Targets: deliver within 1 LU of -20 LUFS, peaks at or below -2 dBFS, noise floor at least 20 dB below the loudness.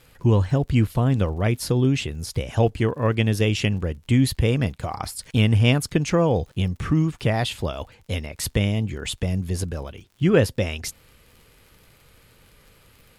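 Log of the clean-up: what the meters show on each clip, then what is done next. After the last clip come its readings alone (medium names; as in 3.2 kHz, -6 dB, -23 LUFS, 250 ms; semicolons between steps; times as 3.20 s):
tick rate 58 per s; loudness -23.0 LUFS; peak level -4.0 dBFS; loudness target -20.0 LUFS
-> de-click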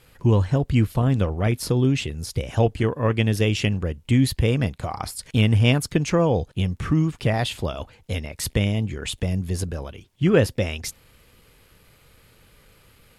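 tick rate 0.15 per s; loudness -23.0 LUFS; peak level -4.0 dBFS; loudness target -20.0 LUFS
-> trim +3 dB; peak limiter -2 dBFS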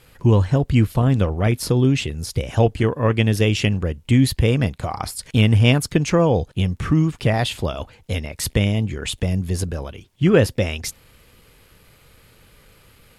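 loudness -20.0 LUFS; peak level -2.0 dBFS; noise floor -53 dBFS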